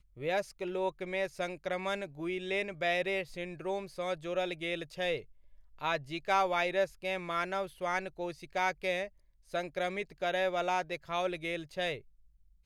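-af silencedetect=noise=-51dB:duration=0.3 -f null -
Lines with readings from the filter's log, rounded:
silence_start: 9.09
silence_end: 9.49 | silence_duration: 0.41
silence_start: 12.01
silence_end: 12.66 | silence_duration: 0.65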